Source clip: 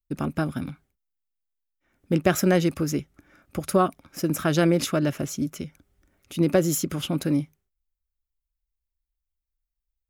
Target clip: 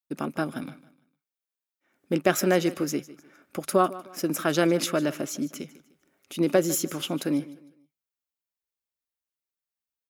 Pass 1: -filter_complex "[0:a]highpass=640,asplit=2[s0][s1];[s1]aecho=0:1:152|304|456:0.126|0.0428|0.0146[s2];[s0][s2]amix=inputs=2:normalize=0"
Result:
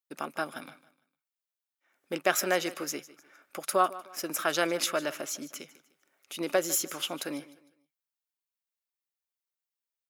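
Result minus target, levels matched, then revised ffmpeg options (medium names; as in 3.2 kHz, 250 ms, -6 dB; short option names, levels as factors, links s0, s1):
250 Hz band -7.0 dB
-filter_complex "[0:a]highpass=250,asplit=2[s0][s1];[s1]aecho=0:1:152|304|456:0.126|0.0428|0.0146[s2];[s0][s2]amix=inputs=2:normalize=0"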